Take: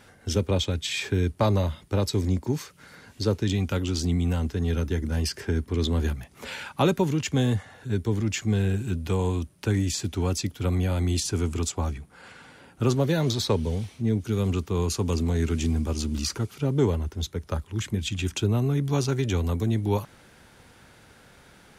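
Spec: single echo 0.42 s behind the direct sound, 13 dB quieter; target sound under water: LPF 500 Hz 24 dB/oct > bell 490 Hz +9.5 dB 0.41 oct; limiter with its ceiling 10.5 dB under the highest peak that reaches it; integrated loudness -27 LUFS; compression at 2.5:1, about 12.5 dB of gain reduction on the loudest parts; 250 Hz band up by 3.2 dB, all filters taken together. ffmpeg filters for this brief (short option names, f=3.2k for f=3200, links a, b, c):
-af "equalizer=f=250:t=o:g=3.5,acompressor=threshold=-36dB:ratio=2.5,alimiter=level_in=5.5dB:limit=-24dB:level=0:latency=1,volume=-5.5dB,lowpass=f=500:w=0.5412,lowpass=f=500:w=1.3066,equalizer=f=490:t=o:w=0.41:g=9.5,aecho=1:1:420:0.224,volume=12dB"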